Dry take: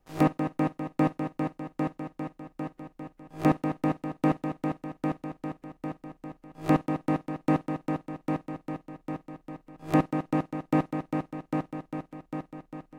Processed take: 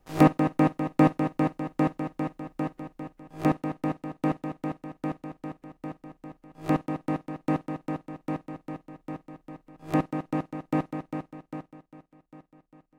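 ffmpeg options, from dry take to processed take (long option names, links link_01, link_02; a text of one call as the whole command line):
ffmpeg -i in.wav -af "volume=5dB,afade=type=out:start_time=2.59:duration=0.99:silence=0.446684,afade=type=out:start_time=10.91:duration=0.95:silence=0.251189" out.wav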